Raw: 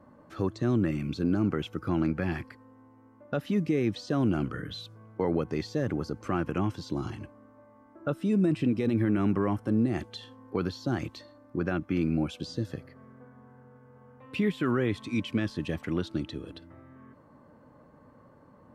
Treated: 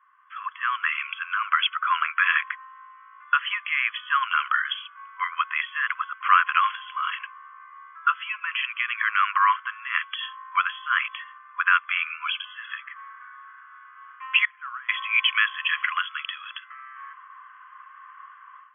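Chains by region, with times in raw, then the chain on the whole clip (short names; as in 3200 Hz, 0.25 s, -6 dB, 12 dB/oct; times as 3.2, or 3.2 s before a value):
14.45–14.89 sample sorter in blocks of 8 samples + LPF 1400 Hz 24 dB/oct + differentiator
whole clip: FFT band-pass 1000–3400 Hz; AGC gain up to 15.5 dB; gain +4 dB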